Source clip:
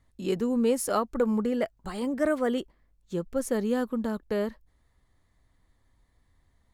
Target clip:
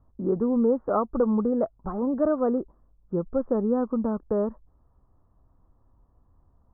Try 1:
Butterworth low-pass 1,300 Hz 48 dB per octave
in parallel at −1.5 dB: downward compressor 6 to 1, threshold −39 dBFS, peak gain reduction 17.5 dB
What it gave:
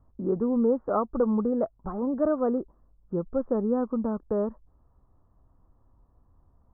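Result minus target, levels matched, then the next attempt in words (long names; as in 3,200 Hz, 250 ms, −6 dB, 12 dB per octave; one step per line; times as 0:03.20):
downward compressor: peak gain reduction +7.5 dB
Butterworth low-pass 1,300 Hz 48 dB per octave
in parallel at −1.5 dB: downward compressor 6 to 1, threshold −30 dBFS, peak gain reduction 10 dB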